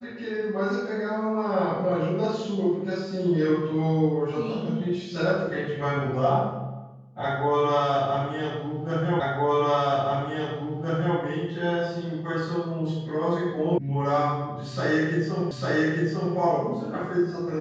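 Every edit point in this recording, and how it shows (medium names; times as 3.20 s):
9.20 s: repeat of the last 1.97 s
13.78 s: sound stops dead
15.51 s: repeat of the last 0.85 s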